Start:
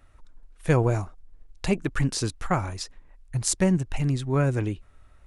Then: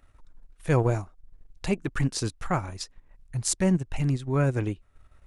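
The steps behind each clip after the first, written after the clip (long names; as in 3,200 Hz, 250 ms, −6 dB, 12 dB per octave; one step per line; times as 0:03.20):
transient designer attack −4 dB, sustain −8 dB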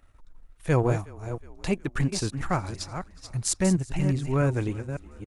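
delay that plays each chunk backwards 276 ms, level −8.5 dB
echo with shifted repeats 366 ms, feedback 59%, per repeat −33 Hz, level −22.5 dB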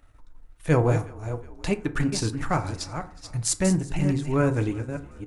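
feedback delay network reverb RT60 0.51 s, low-frequency decay 0.85×, high-frequency decay 0.45×, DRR 8 dB
level +1.5 dB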